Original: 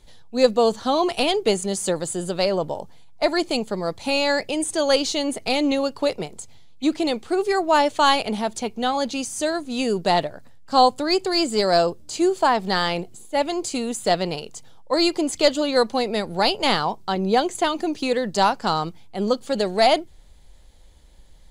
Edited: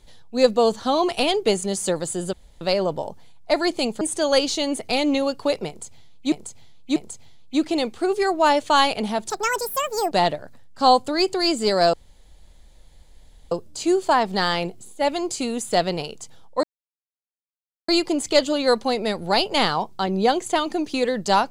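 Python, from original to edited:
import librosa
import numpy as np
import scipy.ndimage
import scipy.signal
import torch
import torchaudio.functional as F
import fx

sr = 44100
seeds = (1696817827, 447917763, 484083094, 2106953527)

y = fx.edit(x, sr, fx.insert_room_tone(at_s=2.33, length_s=0.28),
    fx.cut(start_s=3.73, length_s=0.85),
    fx.repeat(start_s=6.25, length_s=0.64, count=3),
    fx.speed_span(start_s=8.59, length_s=1.44, speed=1.77),
    fx.insert_room_tone(at_s=11.85, length_s=1.58),
    fx.insert_silence(at_s=14.97, length_s=1.25), tone=tone)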